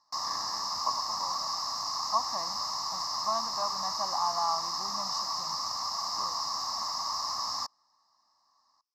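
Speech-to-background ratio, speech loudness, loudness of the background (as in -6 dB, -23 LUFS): -4.5 dB, -36.0 LUFS, -31.5 LUFS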